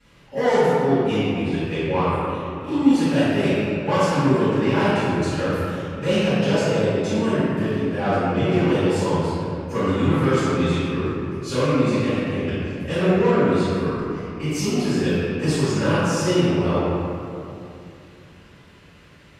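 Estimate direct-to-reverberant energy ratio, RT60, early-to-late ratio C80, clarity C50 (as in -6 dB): -19.5 dB, 2.7 s, -3.5 dB, -5.5 dB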